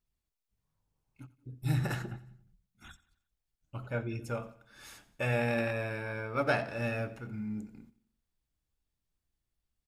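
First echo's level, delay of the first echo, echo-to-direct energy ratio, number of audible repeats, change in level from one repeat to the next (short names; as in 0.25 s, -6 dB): -19.0 dB, 89 ms, -18.0 dB, 3, -6.5 dB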